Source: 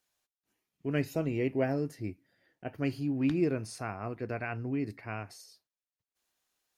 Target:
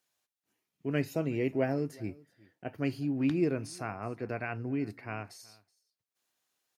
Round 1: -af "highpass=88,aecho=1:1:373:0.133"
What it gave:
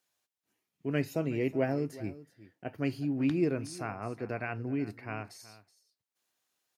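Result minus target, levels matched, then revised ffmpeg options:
echo-to-direct +6.5 dB
-af "highpass=88,aecho=1:1:373:0.0631"

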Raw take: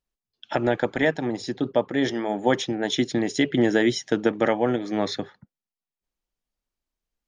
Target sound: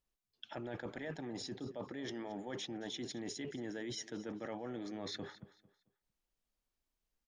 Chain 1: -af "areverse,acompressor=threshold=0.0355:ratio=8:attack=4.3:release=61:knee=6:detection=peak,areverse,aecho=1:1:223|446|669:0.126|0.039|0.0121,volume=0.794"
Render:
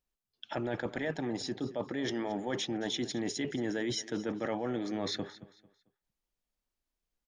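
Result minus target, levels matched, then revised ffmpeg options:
compression: peak gain reduction -9 dB
-af "areverse,acompressor=threshold=0.0106:ratio=8:attack=4.3:release=61:knee=6:detection=peak,areverse,aecho=1:1:223|446|669:0.126|0.039|0.0121,volume=0.794"

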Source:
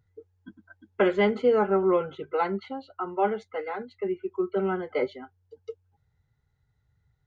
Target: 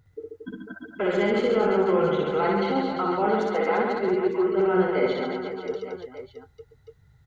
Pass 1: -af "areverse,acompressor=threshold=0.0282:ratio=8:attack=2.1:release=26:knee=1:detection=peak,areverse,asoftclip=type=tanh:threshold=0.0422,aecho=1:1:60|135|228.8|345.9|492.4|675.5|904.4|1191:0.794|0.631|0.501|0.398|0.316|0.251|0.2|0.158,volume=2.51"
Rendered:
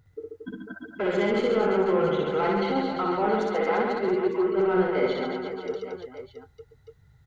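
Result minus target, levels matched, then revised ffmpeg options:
saturation: distortion +20 dB
-af "areverse,acompressor=threshold=0.0282:ratio=8:attack=2.1:release=26:knee=1:detection=peak,areverse,asoftclip=type=tanh:threshold=0.15,aecho=1:1:60|135|228.8|345.9|492.4|675.5|904.4|1191:0.794|0.631|0.501|0.398|0.316|0.251|0.2|0.158,volume=2.51"

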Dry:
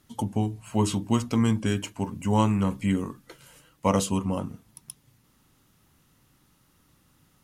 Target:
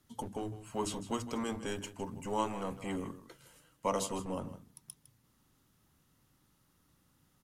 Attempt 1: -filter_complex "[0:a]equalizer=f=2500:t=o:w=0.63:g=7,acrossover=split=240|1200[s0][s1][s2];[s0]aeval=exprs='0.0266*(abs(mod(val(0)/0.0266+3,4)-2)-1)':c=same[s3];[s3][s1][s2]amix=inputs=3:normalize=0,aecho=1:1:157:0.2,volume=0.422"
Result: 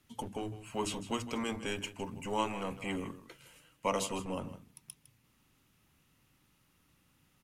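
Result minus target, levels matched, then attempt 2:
2 kHz band +5.0 dB
-filter_complex "[0:a]equalizer=f=2500:t=o:w=0.63:g=-2.5,acrossover=split=240|1200[s0][s1][s2];[s0]aeval=exprs='0.0266*(abs(mod(val(0)/0.0266+3,4)-2)-1)':c=same[s3];[s3][s1][s2]amix=inputs=3:normalize=0,aecho=1:1:157:0.2,volume=0.422"

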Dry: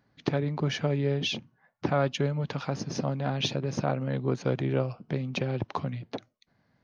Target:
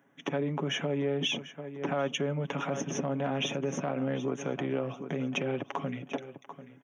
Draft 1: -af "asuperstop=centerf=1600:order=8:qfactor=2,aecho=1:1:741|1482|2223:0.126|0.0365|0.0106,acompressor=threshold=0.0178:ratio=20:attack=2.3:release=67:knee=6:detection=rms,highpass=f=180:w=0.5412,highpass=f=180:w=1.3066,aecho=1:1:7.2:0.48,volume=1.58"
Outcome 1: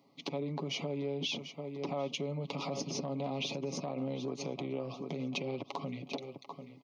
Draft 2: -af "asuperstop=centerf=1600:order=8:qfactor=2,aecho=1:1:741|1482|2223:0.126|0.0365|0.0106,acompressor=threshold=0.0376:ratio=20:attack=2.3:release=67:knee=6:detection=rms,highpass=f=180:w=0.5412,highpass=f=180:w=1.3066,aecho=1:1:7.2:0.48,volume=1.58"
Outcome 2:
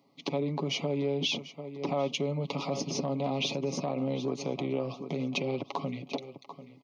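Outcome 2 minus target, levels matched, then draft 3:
2 kHz band -3.0 dB
-af "asuperstop=centerf=4500:order=8:qfactor=2,aecho=1:1:741|1482|2223:0.126|0.0365|0.0106,acompressor=threshold=0.0376:ratio=20:attack=2.3:release=67:knee=6:detection=rms,highpass=f=180:w=0.5412,highpass=f=180:w=1.3066,aecho=1:1:7.2:0.48,volume=1.58"

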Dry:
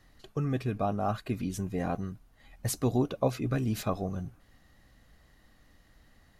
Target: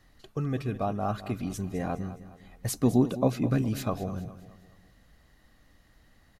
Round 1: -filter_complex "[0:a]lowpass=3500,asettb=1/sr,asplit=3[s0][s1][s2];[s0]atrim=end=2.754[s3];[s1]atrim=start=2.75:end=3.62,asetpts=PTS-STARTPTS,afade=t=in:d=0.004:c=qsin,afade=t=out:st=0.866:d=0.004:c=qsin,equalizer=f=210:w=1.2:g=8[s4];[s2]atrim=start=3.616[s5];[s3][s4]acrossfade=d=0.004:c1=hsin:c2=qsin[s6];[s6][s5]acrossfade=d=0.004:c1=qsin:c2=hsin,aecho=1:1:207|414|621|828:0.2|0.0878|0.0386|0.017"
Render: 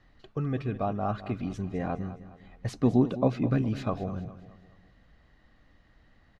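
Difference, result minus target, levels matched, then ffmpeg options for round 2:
4 kHz band -4.5 dB
-filter_complex "[0:a]asettb=1/sr,asplit=3[s0][s1][s2];[s0]atrim=end=2.754[s3];[s1]atrim=start=2.75:end=3.62,asetpts=PTS-STARTPTS,afade=t=in:d=0.004:c=qsin,afade=t=out:st=0.866:d=0.004:c=qsin,equalizer=f=210:w=1.2:g=8[s4];[s2]atrim=start=3.616[s5];[s3][s4]acrossfade=d=0.004:c1=hsin:c2=qsin[s6];[s6][s5]acrossfade=d=0.004:c1=qsin:c2=hsin,aecho=1:1:207|414|621|828:0.2|0.0878|0.0386|0.017"

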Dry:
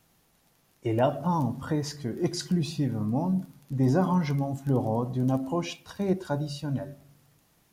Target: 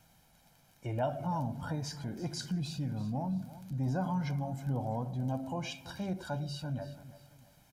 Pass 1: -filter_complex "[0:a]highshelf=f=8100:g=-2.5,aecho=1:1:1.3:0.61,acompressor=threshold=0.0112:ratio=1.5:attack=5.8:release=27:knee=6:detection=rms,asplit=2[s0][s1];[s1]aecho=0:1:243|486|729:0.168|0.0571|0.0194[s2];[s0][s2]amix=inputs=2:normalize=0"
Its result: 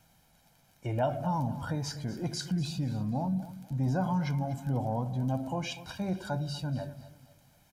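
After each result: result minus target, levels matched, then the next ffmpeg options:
echo 90 ms early; compression: peak gain reduction -3.5 dB
-filter_complex "[0:a]highshelf=f=8100:g=-2.5,aecho=1:1:1.3:0.61,acompressor=threshold=0.0112:ratio=1.5:attack=5.8:release=27:knee=6:detection=rms,asplit=2[s0][s1];[s1]aecho=0:1:333|666|999:0.168|0.0571|0.0194[s2];[s0][s2]amix=inputs=2:normalize=0"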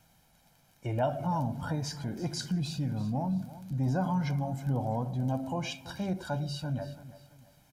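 compression: peak gain reduction -3.5 dB
-filter_complex "[0:a]highshelf=f=8100:g=-2.5,aecho=1:1:1.3:0.61,acompressor=threshold=0.00335:ratio=1.5:attack=5.8:release=27:knee=6:detection=rms,asplit=2[s0][s1];[s1]aecho=0:1:333|666|999:0.168|0.0571|0.0194[s2];[s0][s2]amix=inputs=2:normalize=0"

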